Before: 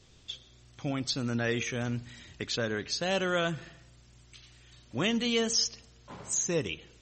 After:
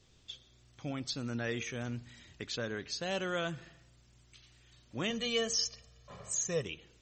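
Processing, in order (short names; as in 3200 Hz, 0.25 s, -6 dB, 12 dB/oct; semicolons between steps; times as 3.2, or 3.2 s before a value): 5.1–6.63 comb 1.7 ms, depth 76%; gain -6 dB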